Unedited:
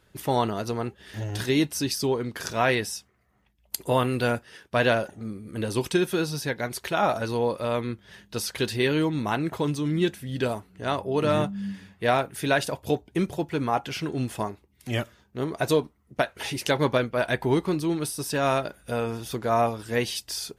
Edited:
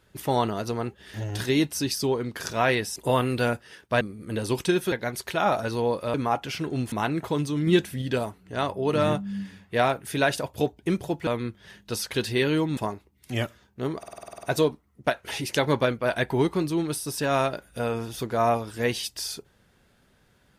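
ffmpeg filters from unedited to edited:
-filter_complex "[0:a]asplit=19[a][b][c][d][e][f][g][h][i][j][k][l][m][n][o][p][q][r][s];[a]atrim=end=2.962[t];[b]atrim=start=3.778:end=4.832[u];[c]atrim=start=5.268:end=6.182[v];[d]atrim=start=6.488:end=7.712[w];[e]atrim=start=13.558:end=14.342[x];[f]atrim=start=9.208:end=9.962[y];[g]atrim=start=9.958:end=10.312,asetpts=PTS-STARTPTS,volume=4dB[z];[h]atrim=start=10.308:end=13.562[aa];[i]atrim=start=7.708:end=9.212[ab];[j]atrim=start=14.338:end=15.602[ac];[k]atrim=start=15.548:end=15.602[ad];[l]atrim=start=15.548:end=15.602[ae];[m]atrim=start=15.548:end=15.602[af];[n]atrim=start=15.548:end=15.602[ag];[o]atrim=start=15.548:end=15.602[ah];[p]atrim=start=15.548:end=15.602[ai];[q]atrim=start=15.548:end=15.602[aj];[r]atrim=start=15.548:end=15.602[ak];[s]atrim=start=15.548[al];[t][u]acrossfade=d=0.004:c1=hsin:c2=hsin[am];[am][v]acrossfade=d=0.004:c1=hsin:c2=hsin[an];[an][w]acrossfade=d=0.004:c1=hsin:c2=hsin[ao];[ao][x]acrossfade=d=0.004:c1=hsin:c2=hsin[ap];[ap][y]acrossfade=d=0.004:c1=hsin:c2=hsin[aq];[aq][z]acrossfade=d=0.004:c1=hsin:c2=hsin[ar];[ar][aa]acrossfade=d=0.004:c1=hsin:c2=hsin[as];[as][ab]acrossfade=d=0.004:c1=hsin:c2=hsin[at];[at][ac]acrossfade=d=0.004:c1=hsin:c2=hsin[au];[au][ad]acrossfade=d=0.004:c1=hsin:c2=hsin[av];[av][ae]acrossfade=d=0.004:c1=hsin:c2=hsin[aw];[aw][af]acrossfade=d=0.004:c1=hsin:c2=hsin[ax];[ax][ag]acrossfade=d=0.004:c1=hsin:c2=hsin[ay];[ay][ah]acrossfade=d=0.004:c1=hsin:c2=hsin[az];[az][ai]acrossfade=d=0.004:c1=hsin:c2=hsin[ba];[ba][aj]acrossfade=d=0.004:c1=hsin:c2=hsin[bb];[bb][ak]acrossfade=d=0.004:c1=hsin:c2=hsin[bc];[bc][al]acrossfade=d=0.004:c1=hsin:c2=hsin"

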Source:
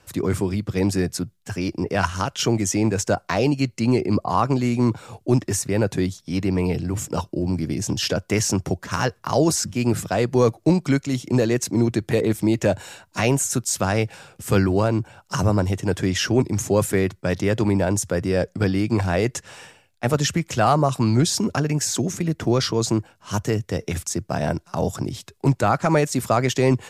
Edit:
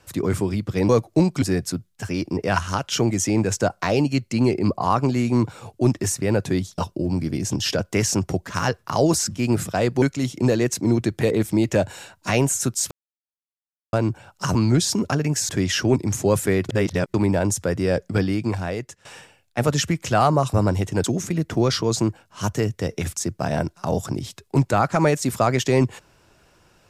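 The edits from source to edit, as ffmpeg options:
-filter_complex "[0:a]asplit=14[a][b][c][d][e][f][g][h][i][j][k][l][m][n];[a]atrim=end=0.892[o];[b]atrim=start=10.388:end=10.922[p];[c]atrim=start=0.888:end=6.252[q];[d]atrim=start=7.148:end=10.392[r];[e]atrim=start=10.918:end=13.81,asetpts=PTS-STARTPTS,afade=t=out:st=2.888:d=0.004:c=hsin[s];[f]atrim=start=13.81:end=14.83,asetpts=PTS-STARTPTS,volume=0[t];[g]atrim=start=14.83:end=15.452,asetpts=PTS-STARTPTS,afade=t=in:d=0.004:c=hsin[u];[h]atrim=start=20.998:end=21.942[v];[i]atrim=start=15.948:end=17.152[w];[j]atrim=start=17.148:end=17.602,asetpts=PTS-STARTPTS,areverse[x];[k]atrim=start=17.598:end=19.51,asetpts=PTS-STARTPTS,afade=t=out:st=1.032:d=0.88:silence=0.141254[y];[l]atrim=start=19.51:end=21.002,asetpts=PTS-STARTPTS,afade=t=in:d=0.004:c=hsin:silence=0.141254[z];[m]atrim=start=15.448:end=15.952[aa];[n]atrim=start=21.938[ab];[o][p]acrossfade=d=0.004:c1=hsin:c2=hsin[ac];[ac][q]acrossfade=d=0.004:c1=hsin:c2=hsin[ad];[ad][r]acrossfade=d=0.004:c1=hsin:c2=hsin[ae];[s][t][u]concat=n=3:v=0:a=1[af];[ae][af]acrossfade=d=0.004:c1=hsin:c2=hsin[ag];[ag][v]acrossfade=d=0.004:c1=hsin:c2=hsin[ah];[ah][w]acrossfade=d=0.004:c1=hsin:c2=hsin[ai];[ai][x]acrossfade=d=0.004:c1=hsin:c2=hsin[aj];[y][z]concat=n=2:v=0:a=1[ak];[aj][ak]acrossfade=d=0.004:c1=hsin:c2=hsin[al];[al][aa]acrossfade=d=0.004:c1=hsin:c2=hsin[am];[am][ab]acrossfade=d=0.004:c1=hsin:c2=hsin"

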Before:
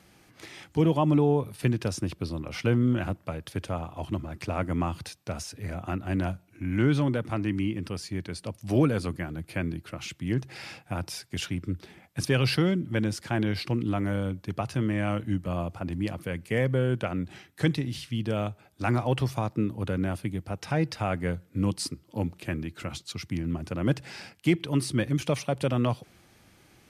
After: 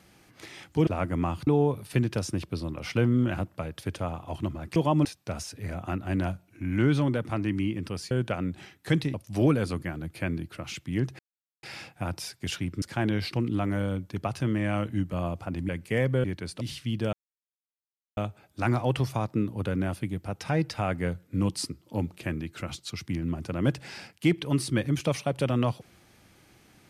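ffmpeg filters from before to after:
-filter_complex "[0:a]asplit=13[a][b][c][d][e][f][g][h][i][j][k][l][m];[a]atrim=end=0.872[n];[b]atrim=start=4.448:end=5.052[o];[c]atrim=start=1.158:end=4.452[p];[d]atrim=start=0.868:end=1.162[q];[e]atrim=start=5.048:end=8.112[r];[f]atrim=start=16.838:end=17.872[s];[g]atrim=start=8.478:end=10.53,asetpts=PTS-STARTPTS,afade=t=out:st=2.048:d=0.004:c=hsin,apad=pad_dur=0.44[t];[h]atrim=start=10.53:end=11.722,asetpts=PTS-STARTPTS,afade=t=in:d=0.004:c=hsin[u];[i]atrim=start=13.158:end=16.032[v];[j]atrim=start=16.288:end=16.842[w];[k]atrim=start=8.108:end=8.482[x];[l]atrim=start=17.868:end=18.39,asetpts=PTS-STARTPTS,afade=t=out:st=0.518:d=0.004:c=hsin,apad=pad_dur=1.04[y];[m]atrim=start=18.39,asetpts=PTS-STARTPTS,afade=t=in:d=0.004:c=hsin[z];[n][o]acrossfade=d=0.004:c1=hsin:c2=hsin[aa];[aa][p]acrossfade=d=0.004:c1=hsin:c2=hsin[ab];[ab][q]acrossfade=d=0.004:c1=hsin:c2=hsin[ac];[ac][r]acrossfade=d=0.004:c1=hsin:c2=hsin[ad];[ad][s]acrossfade=d=0.004:c1=hsin:c2=hsin[ae];[t][u]concat=n=2:v=0:a=1[af];[ae][af]acrossfade=d=0.004:c1=hsin:c2=hsin[ag];[ag][v]acrossfade=d=0.004:c1=hsin:c2=hsin[ah];[ah][w]acrossfade=d=0.004:c1=hsin:c2=hsin[ai];[ai][x]acrossfade=d=0.004:c1=hsin:c2=hsin[aj];[y][z]concat=n=2:v=0:a=1[ak];[aj][ak]acrossfade=d=0.004:c1=hsin:c2=hsin"

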